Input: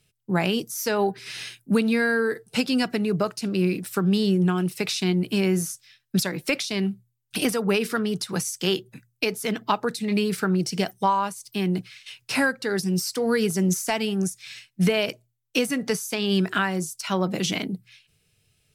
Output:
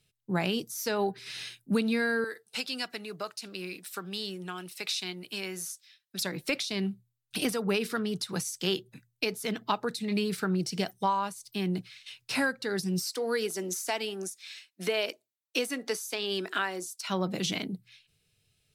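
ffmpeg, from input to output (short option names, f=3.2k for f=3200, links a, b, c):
-filter_complex "[0:a]asettb=1/sr,asplit=3[a][b][c];[a]atrim=end=2.244[d];[b]atrim=start=2.24:end=6.21,asetpts=PTS-STARTPTS,afade=t=in:d=0.004:c=qsin,afade=t=out:st=3.966:d=0.004:c=qsin,highpass=f=1.1k:p=1[e];[c]atrim=start=6.206[f];[d][e]acrossfade=d=0.004:c1=hsin:c2=qsin[g];[g][f]acrossfade=d=0.004:c1=qsin:c2=hsin,asettb=1/sr,asplit=3[h][i][j];[h]atrim=end=13.064[k];[i]atrim=start=13.06:end=17.09,asetpts=PTS-STARTPTS,afade=t=in:d=0.004:c=qsin,afade=t=out:st=4.026:d=0.004:c=qsin,highpass=f=280:w=0.5412,highpass=f=280:w=1.3066[l];[j]atrim=start=17.086[m];[k][l]acrossfade=d=0.004:c1=hsin:c2=qsin[n];[n][m]acrossfade=d=0.004:c1=qsin:c2=hsin,equalizer=f=3.9k:w=3.1:g=4.5,volume=-6dB"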